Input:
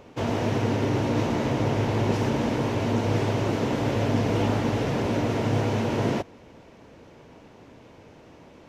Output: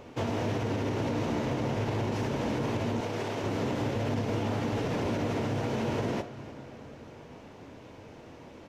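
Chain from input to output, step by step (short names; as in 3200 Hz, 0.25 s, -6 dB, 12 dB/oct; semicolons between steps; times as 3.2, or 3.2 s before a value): on a send at -17 dB: reverb RT60 4.3 s, pre-delay 5 ms; on the sum: flange 0.24 Hz, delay 8.1 ms, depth 8.2 ms, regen -66%; limiter -23.5 dBFS, peak gain reduction 7.5 dB; 3–3.44 HPF 290 Hz 6 dB/oct; echo 0.293 s -21 dB; in parallel at -2 dB: compressor, threshold -42 dBFS, peak gain reduction 13 dB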